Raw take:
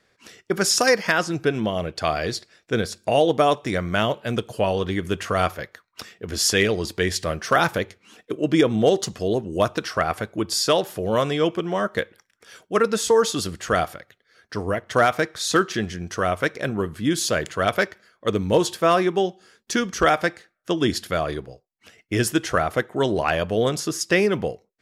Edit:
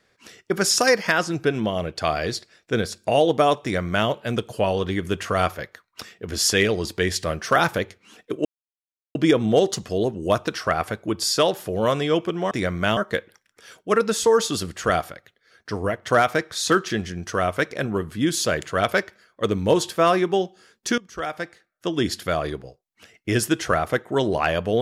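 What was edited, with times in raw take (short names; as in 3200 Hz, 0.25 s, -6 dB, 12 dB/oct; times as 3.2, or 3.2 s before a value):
3.62–4.08 copy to 11.81
8.45 insert silence 0.70 s
19.82–21.08 fade in, from -20.5 dB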